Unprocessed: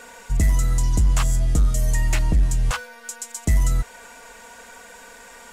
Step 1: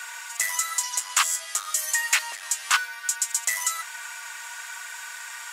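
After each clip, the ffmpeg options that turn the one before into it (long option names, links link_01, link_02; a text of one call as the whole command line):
ffmpeg -i in.wav -af "highpass=frequency=1100:width=0.5412,highpass=frequency=1100:width=1.3066,volume=8dB" out.wav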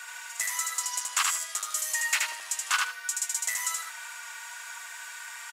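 ffmpeg -i in.wav -af "aecho=1:1:77|154|231:0.708|0.149|0.0312,volume=-5.5dB" out.wav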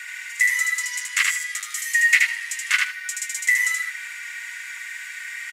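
ffmpeg -i in.wav -af "highpass=frequency=2000:width_type=q:width=7.5" out.wav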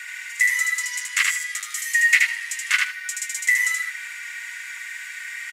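ffmpeg -i in.wav -af anull out.wav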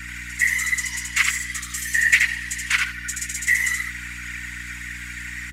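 ffmpeg -i in.wav -af "afftfilt=real='hypot(re,im)*cos(2*PI*random(0))':imag='hypot(re,im)*sin(2*PI*random(1))':win_size=512:overlap=0.75,aeval=exprs='val(0)+0.00562*(sin(2*PI*60*n/s)+sin(2*PI*2*60*n/s)/2+sin(2*PI*3*60*n/s)/3+sin(2*PI*4*60*n/s)/4+sin(2*PI*5*60*n/s)/5)':channel_layout=same,volume=6dB" out.wav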